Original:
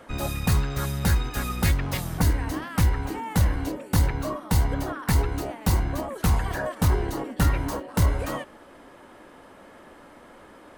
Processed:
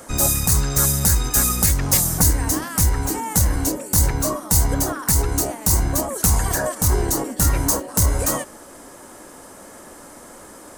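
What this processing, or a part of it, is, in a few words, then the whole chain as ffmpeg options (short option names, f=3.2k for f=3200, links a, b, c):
over-bright horn tweeter: -af "highshelf=f=4.7k:t=q:w=1.5:g=14,alimiter=limit=-10dB:level=0:latency=1:release=170,volume=6dB"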